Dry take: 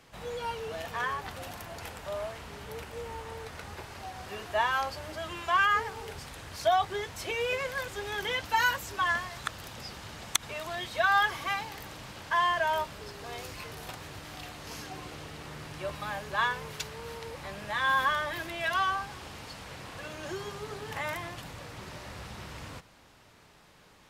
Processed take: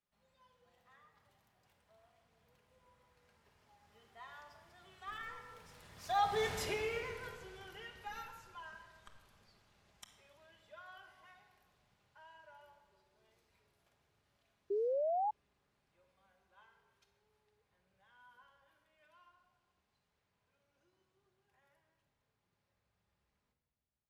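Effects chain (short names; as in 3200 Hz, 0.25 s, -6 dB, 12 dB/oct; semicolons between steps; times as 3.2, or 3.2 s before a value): Doppler pass-by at 6.5, 29 m/s, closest 3.2 m; in parallel at -9 dB: Schmitt trigger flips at -41.5 dBFS; on the sum: shoebox room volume 1900 m³, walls mixed, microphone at 1.3 m; painted sound rise, 14.7–15.31, 390–870 Hz -34 dBFS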